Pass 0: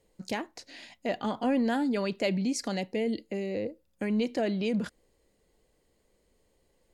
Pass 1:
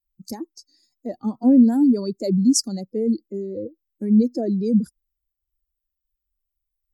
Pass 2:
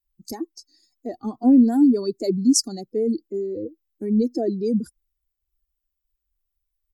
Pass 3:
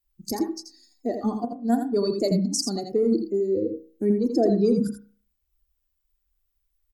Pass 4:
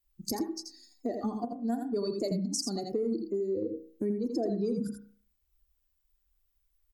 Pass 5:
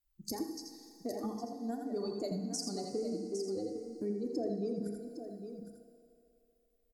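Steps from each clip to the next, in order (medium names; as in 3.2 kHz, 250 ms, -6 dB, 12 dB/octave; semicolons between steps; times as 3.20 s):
expander on every frequency bin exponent 2; FFT filter 120 Hz 0 dB, 240 Hz +14 dB, 2.1 kHz -17 dB, 3.1 kHz -29 dB, 5 kHz +13 dB; trim +3.5 dB
comb 2.7 ms, depth 52%
compressor with a negative ratio -22 dBFS, ratio -0.5; delay 83 ms -7 dB; reverberation, pre-delay 34 ms, DRR 11 dB
compression 3:1, threshold -31 dBFS, peak gain reduction 11.5 dB
delay 809 ms -9.5 dB; FDN reverb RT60 2.9 s, low-frequency decay 0.75×, high-frequency decay 0.9×, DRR 7.5 dB; trim -6 dB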